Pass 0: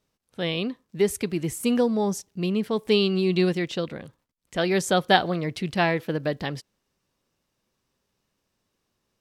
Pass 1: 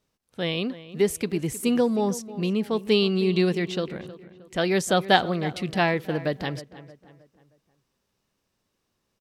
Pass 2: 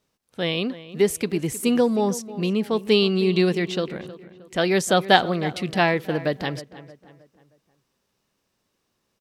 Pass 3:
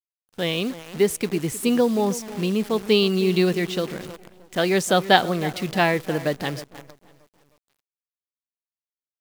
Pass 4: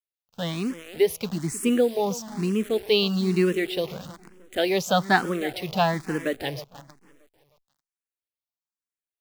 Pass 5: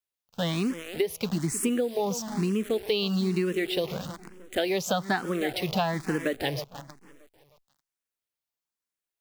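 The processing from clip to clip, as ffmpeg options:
-filter_complex "[0:a]asplit=2[a][b];[b]adelay=313,lowpass=f=2.7k:p=1,volume=-15.5dB,asplit=2[c][d];[d]adelay=313,lowpass=f=2.7k:p=1,volume=0.42,asplit=2[e][f];[f]adelay=313,lowpass=f=2.7k:p=1,volume=0.42,asplit=2[g][h];[h]adelay=313,lowpass=f=2.7k:p=1,volume=0.42[i];[a][c][e][g][i]amix=inputs=5:normalize=0"
-af "lowshelf=f=100:g=-6.5,volume=3dB"
-af "acrusher=bits=7:dc=4:mix=0:aa=0.000001"
-filter_complex "[0:a]asplit=2[a][b];[b]afreqshift=1.1[c];[a][c]amix=inputs=2:normalize=1"
-af "acompressor=threshold=-26dB:ratio=10,volume=3dB"

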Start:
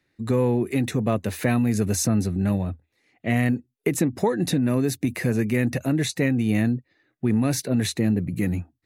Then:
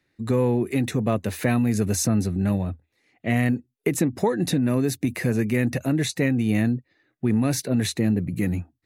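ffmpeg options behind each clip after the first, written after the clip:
-af anull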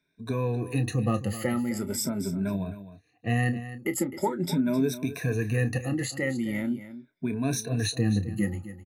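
-filter_complex "[0:a]afftfilt=real='re*pow(10,20/40*sin(2*PI*(1.6*log(max(b,1)*sr/1024/100)/log(2)-(0.42)*(pts-256)/sr)))':imag='im*pow(10,20/40*sin(2*PI*(1.6*log(max(b,1)*sr/1024/100)/log(2)-(0.42)*(pts-256)/sr)))':win_size=1024:overlap=0.75,asplit=2[a][b];[b]adelay=30,volume=-12dB[c];[a][c]amix=inputs=2:normalize=0,aecho=1:1:260:0.211,volume=-9dB"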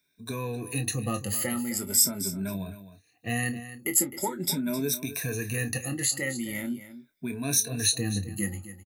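-filter_complex "[0:a]crystalizer=i=5:c=0,asplit=2[a][b];[b]adelay=21,volume=-11.5dB[c];[a][c]amix=inputs=2:normalize=0,volume=-5dB"

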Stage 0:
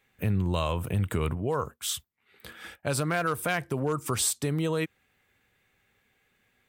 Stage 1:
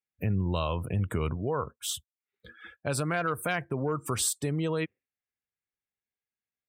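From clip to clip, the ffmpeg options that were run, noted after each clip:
-af "afftdn=nr=29:nf=-43,volume=-1.5dB"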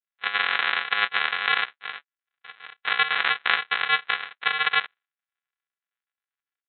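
-af "dynaudnorm=f=250:g=3:m=7dB,aresample=8000,acrusher=samples=26:mix=1:aa=0.000001,aresample=44100,highpass=f=1.6k:t=q:w=2,volume=9dB"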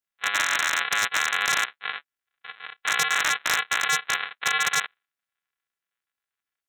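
-af "aeval=exprs='0.188*(abs(mod(val(0)/0.188+3,4)-2)-1)':c=same,volume=3.5dB"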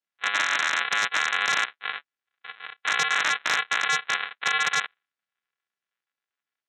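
-af "highpass=130,lowpass=5.5k"

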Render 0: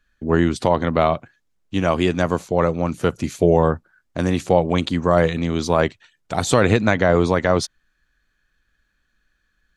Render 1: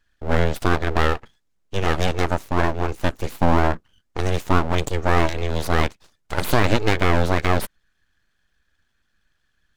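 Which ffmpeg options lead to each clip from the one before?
-af "aeval=exprs='abs(val(0))':c=same"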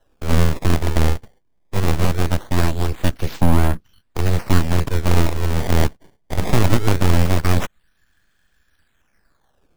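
-filter_complex "[0:a]acrossover=split=250|3000[a][b][c];[b]acompressor=threshold=-47dB:ratio=1.5[d];[a][d][c]amix=inputs=3:normalize=0,acrusher=samples=19:mix=1:aa=0.000001:lfo=1:lforange=30.4:lforate=0.21,volume=6dB"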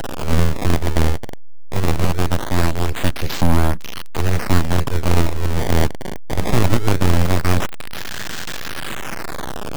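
-af "aeval=exprs='val(0)+0.5*0.15*sgn(val(0))':c=same,volume=-1dB"

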